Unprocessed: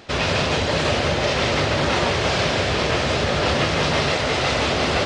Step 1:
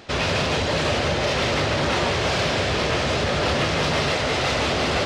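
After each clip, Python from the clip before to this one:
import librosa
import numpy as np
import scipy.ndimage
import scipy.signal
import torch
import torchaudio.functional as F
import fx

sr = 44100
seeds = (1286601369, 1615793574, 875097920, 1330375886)

y = 10.0 ** (-14.5 / 20.0) * np.tanh(x / 10.0 ** (-14.5 / 20.0))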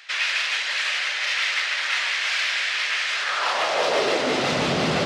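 y = fx.filter_sweep_highpass(x, sr, from_hz=1900.0, to_hz=160.0, start_s=3.1, end_s=4.61, q=2.0)
y = y * librosa.db_to_amplitude(-1.0)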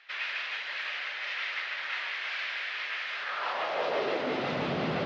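y = scipy.signal.sosfilt(scipy.signal.butter(2, 83.0, 'highpass', fs=sr, output='sos'), x)
y = fx.air_absorb(y, sr, metres=260.0)
y = y * librosa.db_to_amplitude(-7.0)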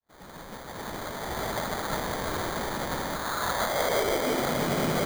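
y = fx.fade_in_head(x, sr, length_s=1.62)
y = fx.sample_hold(y, sr, seeds[0], rate_hz=2700.0, jitter_pct=0)
y = y * librosa.db_to_amplitude(4.0)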